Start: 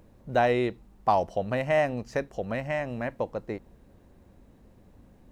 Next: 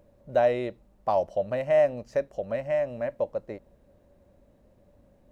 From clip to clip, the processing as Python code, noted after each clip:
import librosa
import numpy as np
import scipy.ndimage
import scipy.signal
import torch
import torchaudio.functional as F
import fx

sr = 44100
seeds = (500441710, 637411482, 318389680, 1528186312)

y = fx.peak_eq(x, sr, hz=580.0, db=14.5, octaves=0.26)
y = y * librosa.db_to_amplitude(-6.0)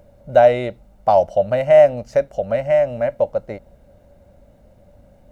y = x + 0.44 * np.pad(x, (int(1.4 * sr / 1000.0), 0))[:len(x)]
y = y * librosa.db_to_amplitude(8.5)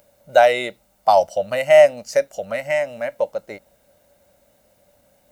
y = fx.noise_reduce_blind(x, sr, reduce_db=6)
y = fx.tilt_eq(y, sr, slope=4.0)
y = y * librosa.db_to_amplitude(3.0)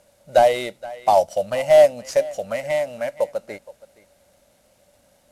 y = fx.cvsd(x, sr, bps=64000)
y = y + 10.0 ** (-20.5 / 20.0) * np.pad(y, (int(470 * sr / 1000.0), 0))[:len(y)]
y = fx.dynamic_eq(y, sr, hz=1700.0, q=1.1, threshold_db=-31.0, ratio=4.0, max_db=-6)